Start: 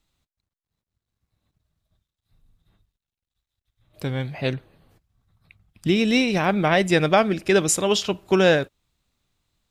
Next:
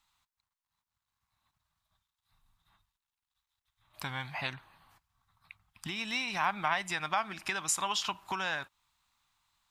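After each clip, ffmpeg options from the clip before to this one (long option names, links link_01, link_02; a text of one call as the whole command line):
ffmpeg -i in.wav -af "acompressor=threshold=-25dB:ratio=16,lowshelf=frequency=670:width_type=q:width=3:gain=-12" out.wav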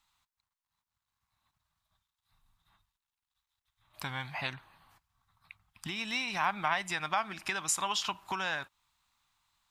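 ffmpeg -i in.wav -af anull out.wav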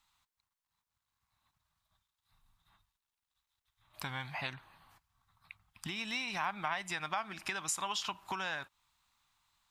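ffmpeg -i in.wav -af "acompressor=threshold=-40dB:ratio=1.5" out.wav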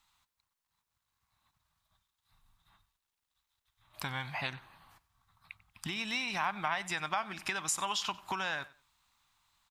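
ffmpeg -i in.wav -af "aecho=1:1:94|188:0.1|0.023,volume=2.5dB" out.wav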